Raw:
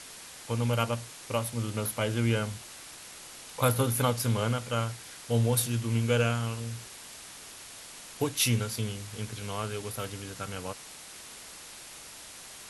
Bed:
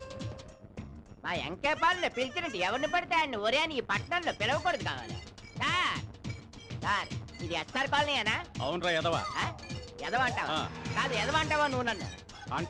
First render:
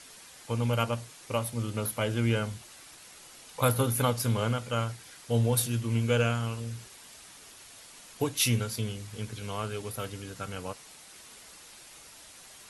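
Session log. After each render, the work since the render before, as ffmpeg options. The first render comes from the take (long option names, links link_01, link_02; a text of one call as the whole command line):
ffmpeg -i in.wav -af "afftdn=noise_reduction=6:noise_floor=-47" out.wav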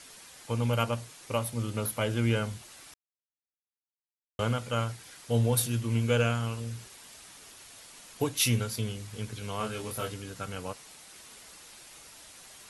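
ffmpeg -i in.wav -filter_complex "[0:a]asettb=1/sr,asplit=3[link_01][link_02][link_03];[link_01]atrim=end=9.584[link_04];[link_02]atrim=start=9.58:end=10.14,asetpts=PTS-STARTPTS,afade=type=in:duration=0.004:curve=qsin,afade=type=out:start_time=0.556:duration=0.004:curve=qsin,asplit=2[link_05][link_06];[link_06]adelay=23,volume=-2.5dB[link_07];[link_05][link_07]amix=inputs=2:normalize=0,atrim=end_sample=24696[link_08];[link_03]atrim=start=10.136[link_09];[link_04][link_08]acrossfade=duration=0.004:curve1=hsin:curve2=qsin[link_10];[link_10][link_09]acrossfade=duration=0.004:curve1=qsin:curve2=hsin,asplit=3[link_11][link_12][link_13];[link_11]atrim=end=2.94,asetpts=PTS-STARTPTS,afade=type=out:start_time=2.936:duration=0.004:curve=hsin[link_14];[link_12]atrim=start=2.94:end=4.39,asetpts=PTS-STARTPTS,volume=0[link_15];[link_13]atrim=start=4.39,asetpts=PTS-STARTPTS,afade=type=in:duration=0.004:curve=hsin[link_16];[link_14][link_15][link_16]concat=n=3:v=0:a=1" out.wav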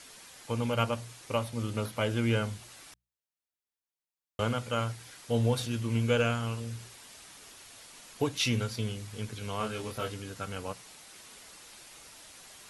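ffmpeg -i in.wav -filter_complex "[0:a]bandreject=frequency=60:width_type=h:width=6,bandreject=frequency=120:width_type=h:width=6,bandreject=frequency=180:width_type=h:width=6,acrossover=split=6400[link_01][link_02];[link_02]acompressor=threshold=-51dB:ratio=4:attack=1:release=60[link_03];[link_01][link_03]amix=inputs=2:normalize=0" out.wav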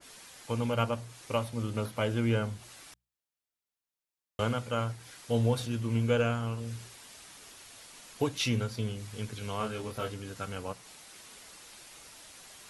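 ffmpeg -i in.wav -af "adynamicequalizer=threshold=0.00501:dfrequency=1600:dqfactor=0.7:tfrequency=1600:tqfactor=0.7:attack=5:release=100:ratio=0.375:range=3.5:mode=cutabove:tftype=highshelf" out.wav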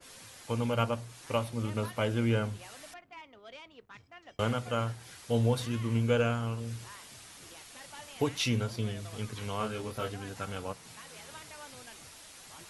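ffmpeg -i in.wav -i bed.wav -filter_complex "[1:a]volume=-21dB[link_01];[0:a][link_01]amix=inputs=2:normalize=0" out.wav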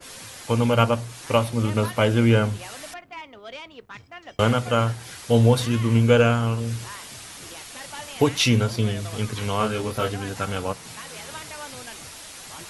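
ffmpeg -i in.wav -af "volume=10.5dB" out.wav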